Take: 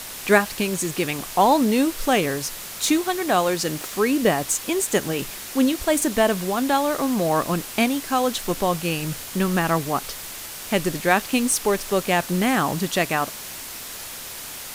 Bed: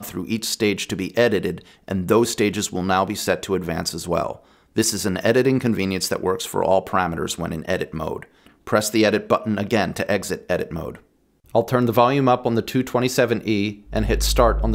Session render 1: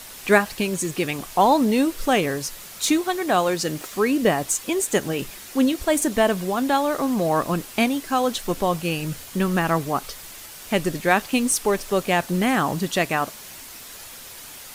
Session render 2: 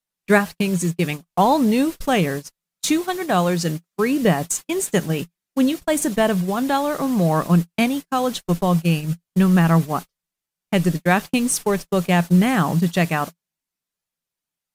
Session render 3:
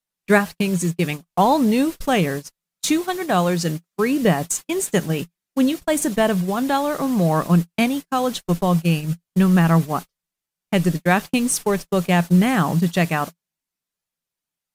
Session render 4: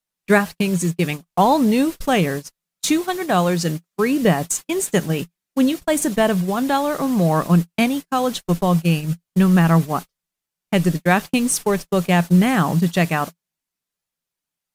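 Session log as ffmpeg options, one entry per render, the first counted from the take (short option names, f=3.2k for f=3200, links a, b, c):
-af "afftdn=nr=6:nf=-36"
-af "agate=range=-47dB:threshold=-26dB:ratio=16:detection=peak,equalizer=f=170:t=o:w=0.39:g=12.5"
-af anull
-af "volume=1dB,alimiter=limit=-2dB:level=0:latency=1"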